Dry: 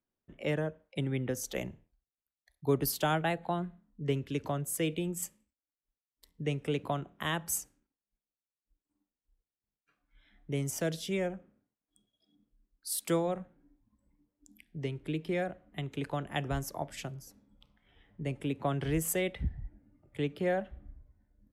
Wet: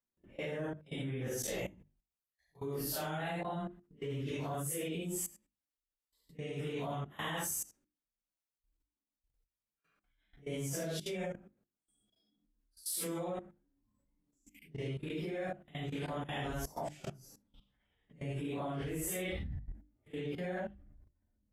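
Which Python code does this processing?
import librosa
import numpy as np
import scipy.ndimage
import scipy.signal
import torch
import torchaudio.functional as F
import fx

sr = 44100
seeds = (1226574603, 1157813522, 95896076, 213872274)

y = fx.phase_scramble(x, sr, seeds[0], window_ms=200)
y = fx.level_steps(y, sr, step_db=20)
y = fx.hum_notches(y, sr, base_hz=50, count=7)
y = F.gain(torch.from_numpy(y), 2.5).numpy()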